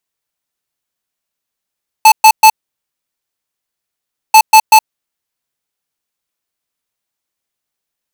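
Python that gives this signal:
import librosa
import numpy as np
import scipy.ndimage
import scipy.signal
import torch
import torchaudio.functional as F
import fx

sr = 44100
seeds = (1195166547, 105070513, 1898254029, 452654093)

y = fx.beep_pattern(sr, wave='square', hz=874.0, on_s=0.07, off_s=0.12, beeps=3, pause_s=1.84, groups=2, level_db=-3.0)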